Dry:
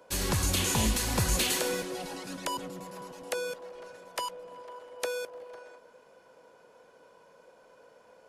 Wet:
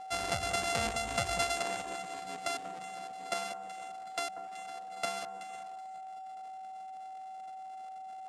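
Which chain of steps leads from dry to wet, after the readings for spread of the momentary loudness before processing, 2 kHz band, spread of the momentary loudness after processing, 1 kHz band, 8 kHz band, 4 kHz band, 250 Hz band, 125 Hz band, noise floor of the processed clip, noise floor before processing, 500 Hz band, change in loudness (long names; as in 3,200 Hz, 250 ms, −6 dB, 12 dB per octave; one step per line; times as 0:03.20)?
20 LU, −1.0 dB, 14 LU, +3.5 dB, −8.0 dB, −5.0 dB, −11.0 dB, −13.0 dB, −45 dBFS, −59 dBFS, −3.0 dB, −6.5 dB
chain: samples sorted by size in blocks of 64 samples
reverb reduction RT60 0.72 s
high-pass filter 58 Hz
low-shelf EQ 360 Hz −10.5 dB
mains-hum notches 50/100/150/200 Hz
on a send: delay that swaps between a low-pass and a high-pass 188 ms, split 1,500 Hz, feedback 52%, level −9 dB
on the sum: steady tone 760 Hz −42 dBFS
low-pass filter 10,000 Hz 24 dB per octave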